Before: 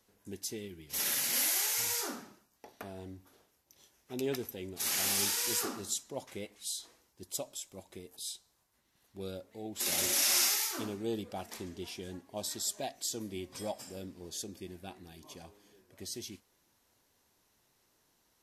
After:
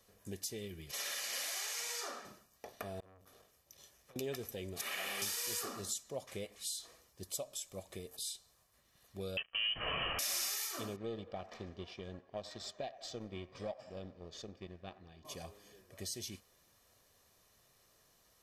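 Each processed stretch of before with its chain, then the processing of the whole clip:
0.91–2.25 s: high-pass 460 Hz + distance through air 53 m
3.00–4.16 s: compression 16:1, threshold -52 dBFS + transformer saturation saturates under 2.5 kHz
4.81–5.22 s: high-pass 270 Hz + resonant high shelf 3.8 kHz -11.5 dB, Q 1.5
9.37–10.19 s: waveshaping leveller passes 5 + frequency inversion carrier 3.2 kHz
10.96–15.25 s: companding laws mixed up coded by A + distance through air 200 m + feedback echo behind a band-pass 91 ms, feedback 57%, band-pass 1 kHz, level -15.5 dB
whole clip: comb 1.7 ms, depth 47%; compression 2.5:1, threshold -43 dBFS; trim +2.5 dB

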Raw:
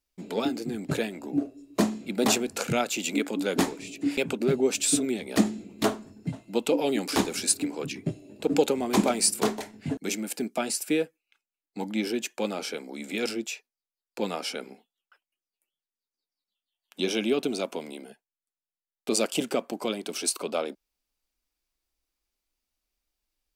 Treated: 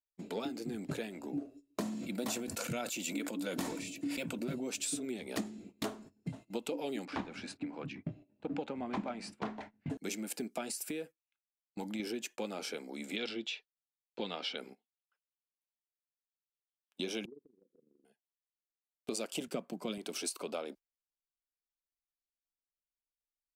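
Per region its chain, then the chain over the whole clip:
1.81–4.70 s: treble shelf 9.2 kHz +7 dB + comb of notches 410 Hz + decay stretcher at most 61 dB/s
7.05–9.90 s: low-pass 2.2 kHz + peaking EQ 410 Hz -9.5 dB 0.59 oct
10.71–12.00 s: treble shelf 7.8 kHz +5 dB + compression 5:1, threshold -28 dBFS
13.16–14.58 s: resonant low-pass 3.5 kHz, resonance Q 3.2 + band-stop 2.5 kHz, Q 18
17.25–18.05 s: rippled Chebyshev low-pass 510 Hz, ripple 3 dB + AM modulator 24 Hz, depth 65% + compression 12:1, threshold -41 dBFS
19.47–19.98 s: peaking EQ 170 Hz +13.5 dB 0.63 oct + band-stop 830 Hz, Q 13 + three bands expanded up and down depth 100%
whole clip: gate -42 dBFS, range -18 dB; compression 4:1, threshold -30 dBFS; trim -5 dB

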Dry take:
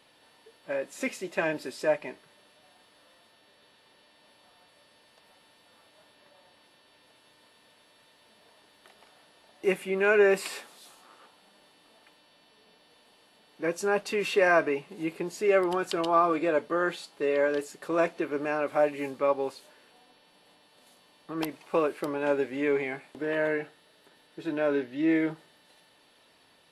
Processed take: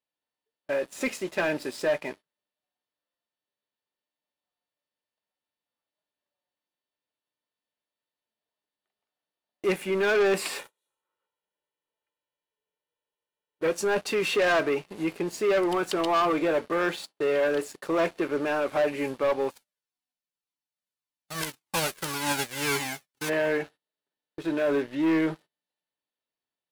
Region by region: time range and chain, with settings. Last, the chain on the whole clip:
10.59–13.72 s: peaking EQ 4.9 kHz -14.5 dB 0.3 oct + comb 2.1 ms, depth 68%
19.50–23.28 s: formants flattened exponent 0.3 + Shepard-style flanger falling 1.8 Hz
whole clip: gate -47 dBFS, range -20 dB; waveshaping leveller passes 3; trim -7 dB

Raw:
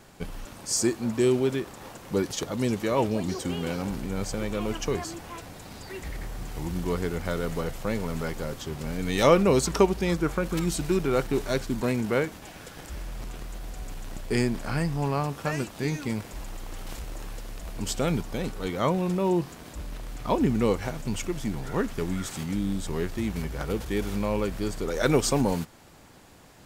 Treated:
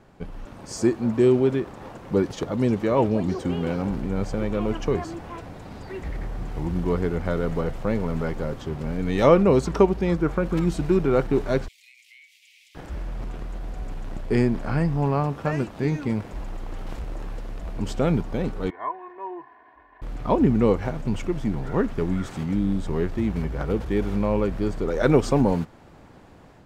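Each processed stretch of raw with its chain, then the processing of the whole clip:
11.68–12.75 s: steep high-pass 2.1 kHz 96 dB/octave + compression 10:1, threshold -45 dBFS
18.70–20.02 s: two resonant band-passes 1.3 kHz, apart 0.76 oct + distance through air 260 m + comb 2.8 ms, depth 100%
whole clip: low-pass 1.2 kHz 6 dB/octave; level rider gain up to 5 dB

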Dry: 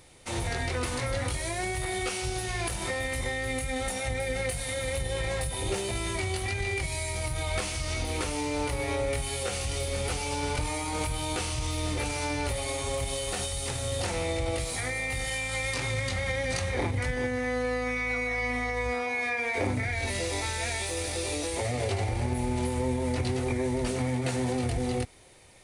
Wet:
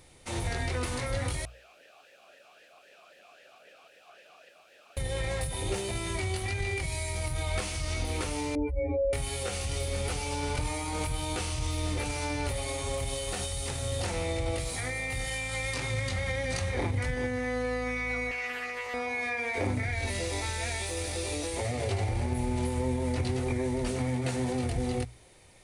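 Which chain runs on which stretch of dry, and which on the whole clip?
1.45–4.97 s: integer overflow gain 32.5 dB + talking filter a-e 3.8 Hz
8.55–9.13 s: spectral contrast enhancement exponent 2.9 + comb 3.9 ms, depth 72%
18.31–18.94 s: high-pass 940 Hz 6 dB/octave + loudspeaker Doppler distortion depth 0.27 ms
whole clip: bass shelf 170 Hz +4 dB; hum notches 60/120 Hz; trim -2.5 dB

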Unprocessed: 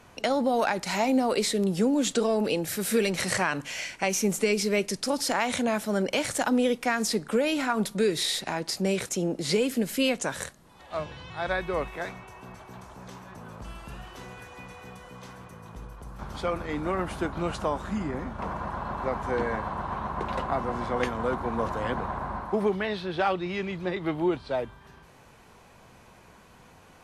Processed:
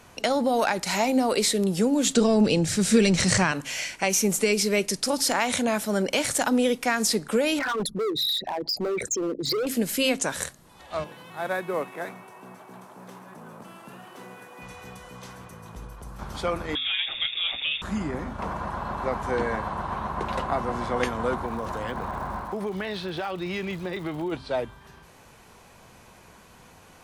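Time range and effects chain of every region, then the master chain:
2.16–3.52 s: low-pass 7.9 kHz 24 dB/octave + tone controls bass +12 dB, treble +4 dB
7.59–9.67 s: resonances exaggerated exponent 3 + overload inside the chain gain 25.5 dB
11.04–14.62 s: CVSD coder 64 kbps + high-pass 160 Hz 24 dB/octave + peaking EQ 5.8 kHz -10.5 dB 2.3 oct
16.75–17.82 s: peaking EQ 550 Hz -9.5 dB 0.9 oct + frequency inversion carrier 3.6 kHz
21.45–24.31 s: compression, threshold -28 dBFS + crackle 160 per s -45 dBFS
whole clip: treble shelf 4.6 kHz +6 dB; de-hum 133.7 Hz, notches 2; trim +1.5 dB

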